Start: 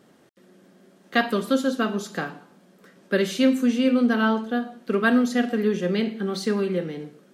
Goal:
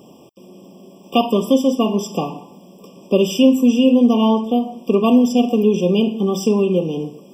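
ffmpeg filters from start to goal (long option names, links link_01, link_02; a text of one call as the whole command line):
ffmpeg -i in.wav -filter_complex "[0:a]asplit=2[link_01][link_02];[link_02]acompressor=threshold=-32dB:ratio=6,volume=1dB[link_03];[link_01][link_03]amix=inputs=2:normalize=0,aexciter=amount=1.2:drive=4.4:freq=5700,afftfilt=real='re*eq(mod(floor(b*sr/1024/1200),2),0)':imag='im*eq(mod(floor(b*sr/1024/1200),2),0)':win_size=1024:overlap=0.75,volume=5.5dB" out.wav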